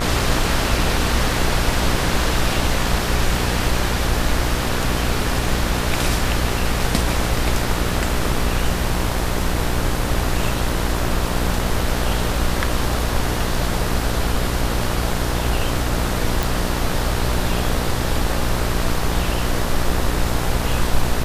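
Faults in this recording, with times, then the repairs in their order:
mains buzz 60 Hz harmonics 33 −24 dBFS
0:16.43: click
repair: click removal
hum removal 60 Hz, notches 33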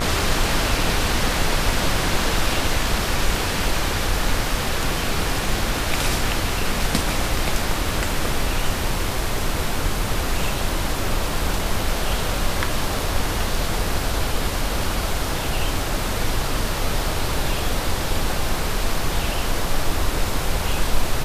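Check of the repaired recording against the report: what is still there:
none of them is left

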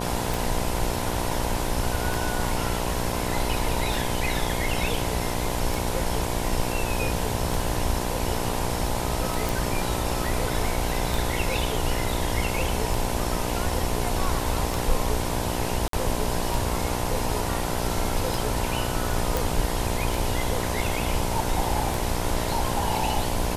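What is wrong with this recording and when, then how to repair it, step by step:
mains buzz 60 Hz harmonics 17 −30 dBFS
scratch tick 33 1/3 rpm
0:09.49: click
0:15.88–0:15.93: drop-out 53 ms
0:19.37: click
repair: click removal
hum removal 60 Hz, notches 17
repair the gap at 0:15.88, 53 ms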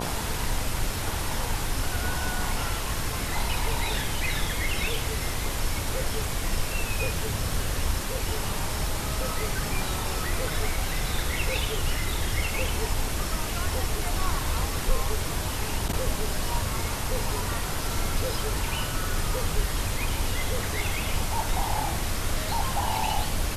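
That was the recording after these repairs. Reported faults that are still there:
none of them is left

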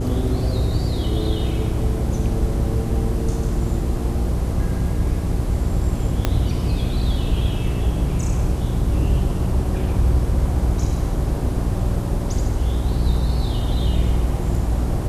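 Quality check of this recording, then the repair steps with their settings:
mains hum 60 Hz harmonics 6 −24 dBFS
0:06.25: click −5 dBFS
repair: click removal
hum removal 60 Hz, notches 6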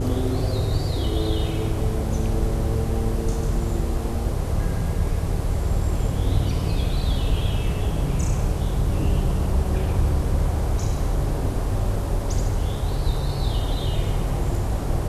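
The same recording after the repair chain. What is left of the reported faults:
0:06.25: click

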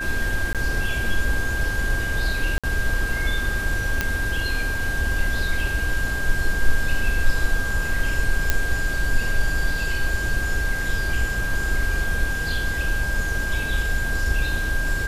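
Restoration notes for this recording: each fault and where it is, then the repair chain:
whistle 1,600 Hz −26 dBFS
0:00.53–0:00.55: drop-out 17 ms
0:02.58–0:02.64: drop-out 56 ms
0:04.01: click −6 dBFS
0:08.50: click −3 dBFS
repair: click removal
notch filter 1,600 Hz, Q 30
repair the gap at 0:00.53, 17 ms
repair the gap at 0:02.58, 56 ms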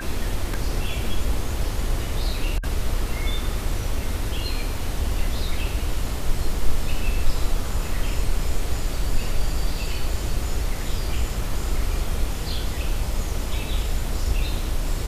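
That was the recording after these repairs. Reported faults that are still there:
none of them is left

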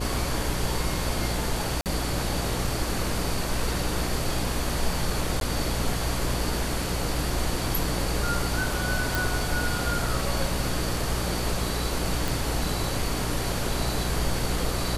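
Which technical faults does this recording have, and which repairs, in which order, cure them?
mains buzz 60 Hz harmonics 9 −31 dBFS
0:01.81–0:01.86: drop-out 48 ms
0:05.40–0:05.41: drop-out 12 ms
0:09.15: click
0:12.28: click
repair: click removal
hum removal 60 Hz, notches 9
repair the gap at 0:01.81, 48 ms
repair the gap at 0:05.40, 12 ms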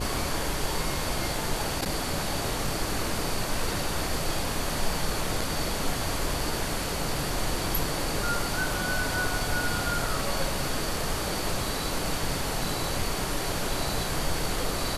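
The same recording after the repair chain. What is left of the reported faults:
none of them is left

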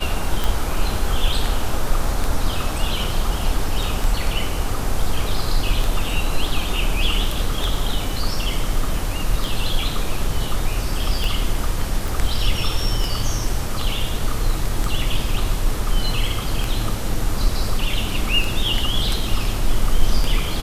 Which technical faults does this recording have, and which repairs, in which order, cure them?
scratch tick 33 1/3 rpm
0:12.08: click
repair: click removal

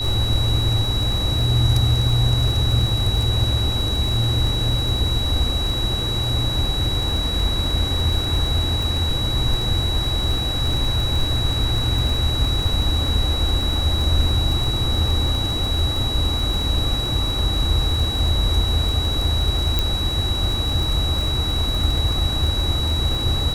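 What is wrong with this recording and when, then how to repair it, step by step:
surface crackle 21 per second −23 dBFS
whistle 3,900 Hz −24 dBFS
0:19.79: click −6 dBFS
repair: click removal
notch filter 3,900 Hz, Q 30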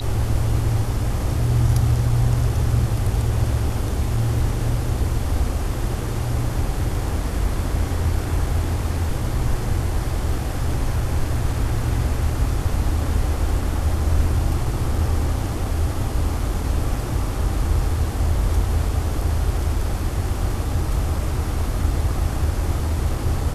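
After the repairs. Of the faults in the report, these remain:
none of them is left

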